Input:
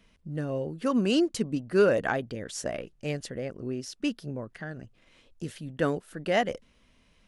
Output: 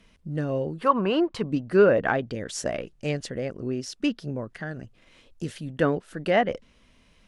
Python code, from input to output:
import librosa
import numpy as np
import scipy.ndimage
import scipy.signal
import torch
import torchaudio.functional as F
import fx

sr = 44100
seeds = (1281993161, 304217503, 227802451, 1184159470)

y = fx.env_lowpass_down(x, sr, base_hz=2400.0, full_db=-21.0)
y = fx.graphic_eq_15(y, sr, hz=(250, 1000, 6300), db=(-9, 12, -9), at=(0.78, 1.43))
y = F.gain(torch.from_numpy(y), 4.0).numpy()